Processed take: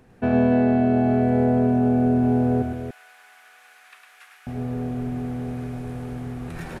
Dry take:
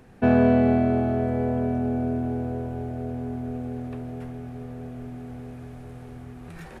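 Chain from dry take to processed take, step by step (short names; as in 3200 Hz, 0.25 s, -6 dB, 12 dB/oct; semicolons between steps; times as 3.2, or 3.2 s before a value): 2.62–4.47 HPF 1400 Hz 24 dB/oct; vocal rider 0.5 s; loudspeakers at several distances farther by 36 m -5 dB, 98 m -7 dB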